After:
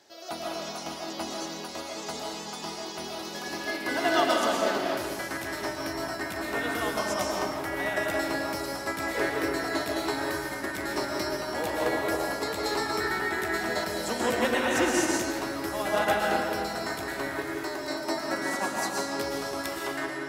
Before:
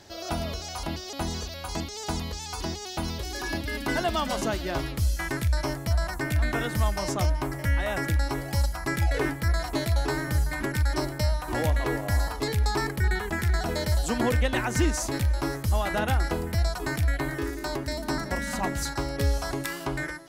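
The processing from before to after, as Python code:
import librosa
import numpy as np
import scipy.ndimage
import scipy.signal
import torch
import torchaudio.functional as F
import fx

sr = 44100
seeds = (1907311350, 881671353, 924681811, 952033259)

y = scipy.signal.sosfilt(scipy.signal.butter(2, 300.0, 'highpass', fs=sr, output='sos'), x)
y = fx.rev_freeverb(y, sr, rt60_s=2.3, hf_ratio=0.7, predelay_ms=85, drr_db=-3.5)
y = fx.upward_expand(y, sr, threshold_db=-35.0, expansion=1.5)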